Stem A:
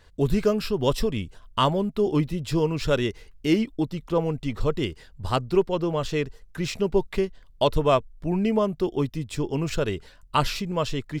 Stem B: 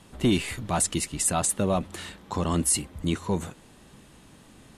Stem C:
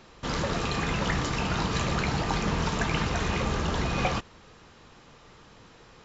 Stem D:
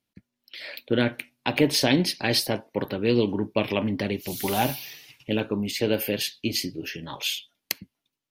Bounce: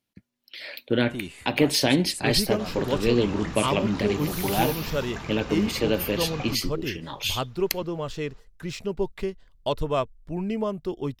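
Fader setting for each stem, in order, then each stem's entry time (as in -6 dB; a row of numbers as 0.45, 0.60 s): -5.0, -12.5, -9.0, 0.0 dB; 2.05, 0.90, 2.35, 0.00 s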